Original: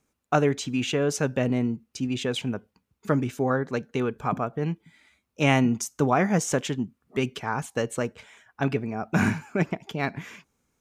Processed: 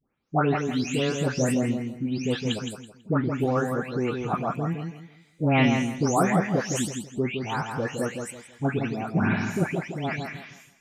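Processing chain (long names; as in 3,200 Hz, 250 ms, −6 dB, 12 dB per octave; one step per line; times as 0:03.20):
every frequency bin delayed by itself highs late, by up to 355 ms
on a send: feedback echo with a low-pass in the loop 164 ms, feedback 29%, low-pass 3,800 Hz, level −5.5 dB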